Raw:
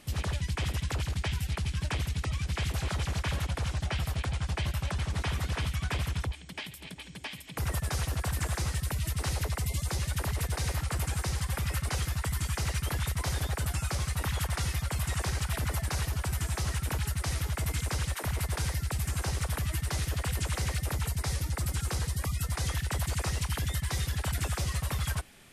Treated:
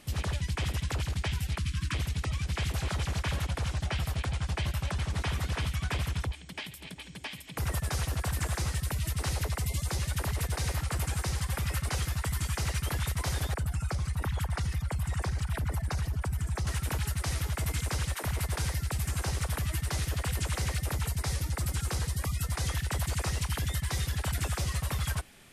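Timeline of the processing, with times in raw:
0:01.59–0:01.94: time-frequency box erased 360–980 Hz
0:13.54–0:16.67: spectral envelope exaggerated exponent 1.5

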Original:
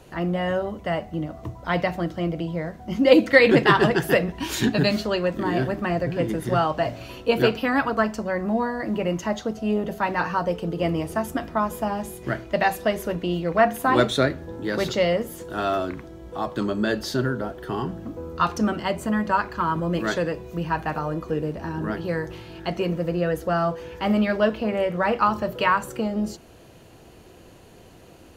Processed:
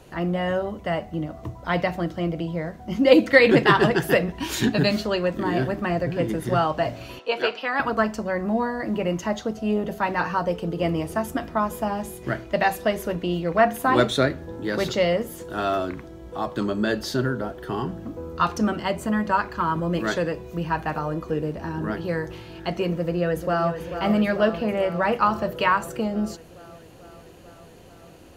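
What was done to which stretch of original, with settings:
0:07.19–0:07.80: band-pass filter 570–5,500 Hz
0:22.92–0:23.73: delay throw 440 ms, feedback 75%, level −9 dB

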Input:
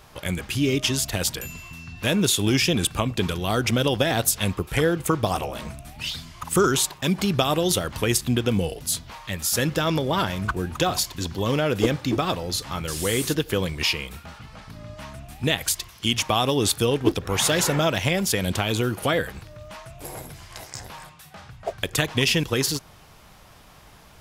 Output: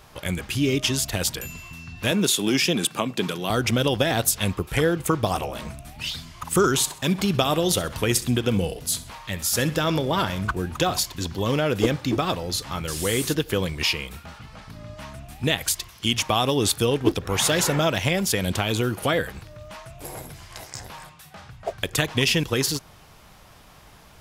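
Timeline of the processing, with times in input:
0:02.11–0:03.50: high-pass filter 160 Hz 24 dB per octave
0:06.74–0:10.44: repeating echo 65 ms, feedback 38%, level −16.5 dB

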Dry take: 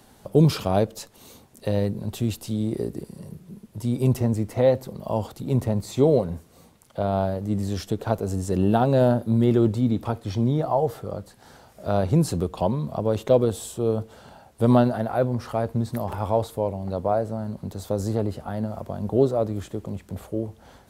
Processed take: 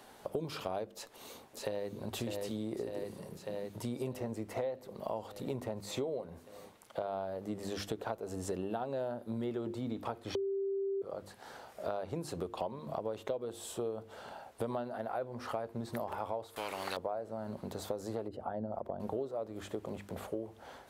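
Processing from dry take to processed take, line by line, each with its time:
0:00.93–0:01.89: delay throw 600 ms, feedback 70%, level −6.5 dB
0:10.35–0:11.02: beep over 392 Hz −16 dBFS
0:16.56–0:16.97: every bin compressed towards the loudest bin 4 to 1
0:18.28–0:19.00: spectral envelope exaggerated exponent 1.5
whole clip: bass and treble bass −13 dB, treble −6 dB; mains-hum notches 50/100/150/200/250/300/350 Hz; downward compressor 10 to 1, threshold −35 dBFS; level +1 dB

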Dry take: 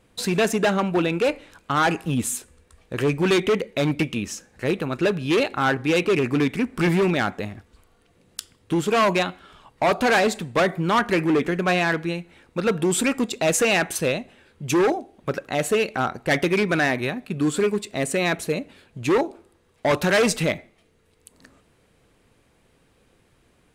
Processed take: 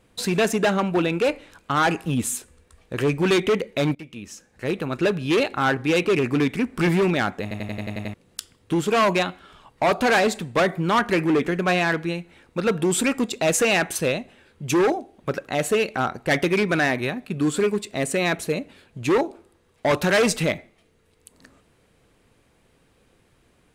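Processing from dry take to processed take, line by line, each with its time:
0:03.95–0:04.95: fade in, from −21 dB
0:07.42: stutter in place 0.09 s, 8 plays

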